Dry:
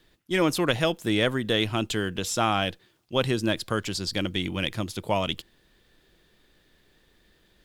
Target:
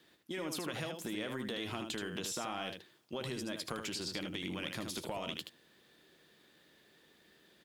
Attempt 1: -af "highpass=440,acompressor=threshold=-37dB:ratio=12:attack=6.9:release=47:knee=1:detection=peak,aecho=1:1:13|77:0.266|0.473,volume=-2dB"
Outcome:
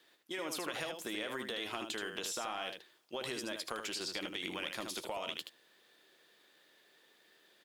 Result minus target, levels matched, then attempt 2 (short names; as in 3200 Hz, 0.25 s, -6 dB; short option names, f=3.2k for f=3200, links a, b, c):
125 Hz band -11.0 dB
-af "highpass=170,acompressor=threshold=-37dB:ratio=12:attack=6.9:release=47:knee=1:detection=peak,aecho=1:1:13|77:0.266|0.473,volume=-2dB"